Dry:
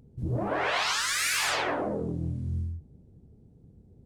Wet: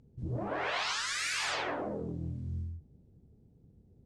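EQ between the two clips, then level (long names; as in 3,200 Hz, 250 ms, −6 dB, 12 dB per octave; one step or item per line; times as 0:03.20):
low-pass filter 11,000 Hz 12 dB per octave
high-frequency loss of the air 69 metres
high-shelf EQ 4,700 Hz +6.5 dB
−6.0 dB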